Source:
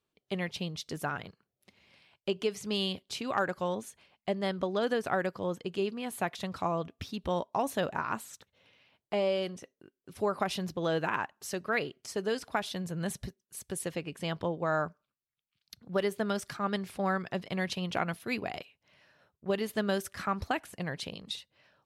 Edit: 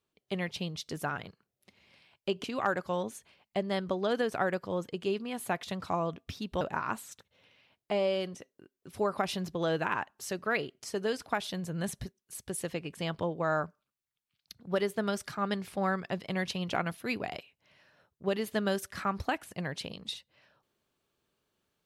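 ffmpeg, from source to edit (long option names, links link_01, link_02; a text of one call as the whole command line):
ffmpeg -i in.wav -filter_complex "[0:a]asplit=3[link_01][link_02][link_03];[link_01]atrim=end=2.442[link_04];[link_02]atrim=start=3.158:end=7.332[link_05];[link_03]atrim=start=7.828[link_06];[link_04][link_05]acrossfade=duration=0.004:curve1=hsin:curve2=hsin[link_07];[link_07][link_06]acrossfade=duration=0.004:curve1=hsin:curve2=hsin" out.wav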